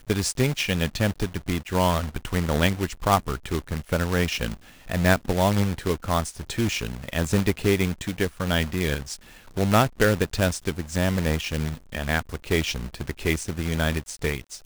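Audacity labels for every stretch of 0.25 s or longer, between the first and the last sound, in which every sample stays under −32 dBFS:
4.540000	4.890000	silence
9.150000	9.570000	silence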